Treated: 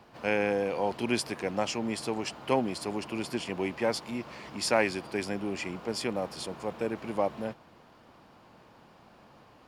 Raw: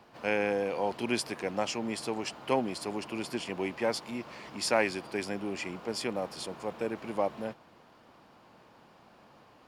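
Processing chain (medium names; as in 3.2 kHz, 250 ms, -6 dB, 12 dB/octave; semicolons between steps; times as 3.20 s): bass shelf 130 Hz +6 dB; trim +1 dB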